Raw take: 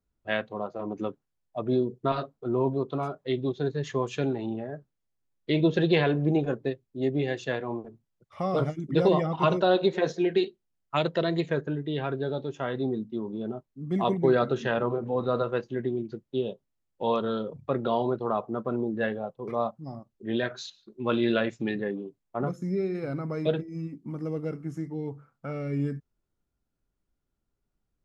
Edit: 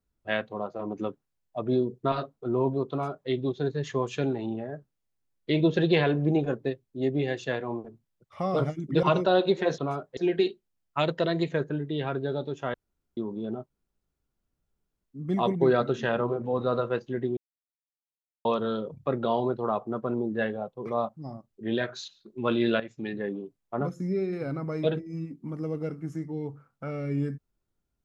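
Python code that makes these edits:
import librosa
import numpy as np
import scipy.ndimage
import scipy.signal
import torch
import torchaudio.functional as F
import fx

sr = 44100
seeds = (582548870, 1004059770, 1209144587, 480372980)

y = fx.edit(x, sr, fx.duplicate(start_s=2.9, length_s=0.39, to_s=10.14),
    fx.cut(start_s=9.03, length_s=0.36),
    fx.room_tone_fill(start_s=12.71, length_s=0.43),
    fx.insert_room_tone(at_s=13.67, length_s=1.35),
    fx.silence(start_s=15.99, length_s=1.08),
    fx.fade_in_from(start_s=21.42, length_s=0.54, floor_db=-13.0), tone=tone)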